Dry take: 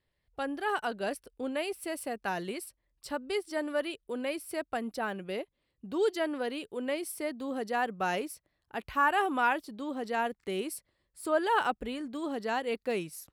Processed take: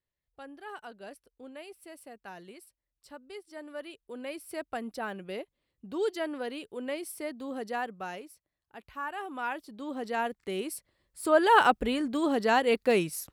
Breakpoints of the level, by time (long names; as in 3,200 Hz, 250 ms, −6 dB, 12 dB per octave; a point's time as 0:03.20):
0:03.45 −12 dB
0:04.62 −2 dB
0:07.73 −2 dB
0:08.23 −10.5 dB
0:09.19 −10.5 dB
0:09.96 0 dB
0:10.61 0 dB
0:11.65 +7.5 dB